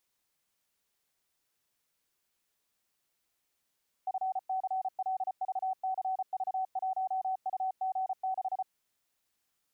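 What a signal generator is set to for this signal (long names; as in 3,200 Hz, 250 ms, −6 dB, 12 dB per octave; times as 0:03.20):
Morse code "FCLVCV1UG6" 34 words per minute 756 Hz −29 dBFS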